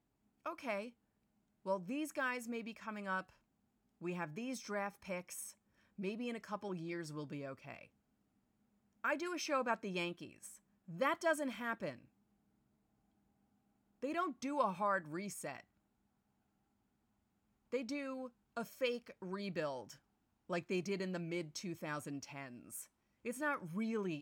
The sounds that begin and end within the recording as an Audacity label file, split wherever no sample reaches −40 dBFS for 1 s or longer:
9.040000	11.910000	sound
14.030000	15.570000	sound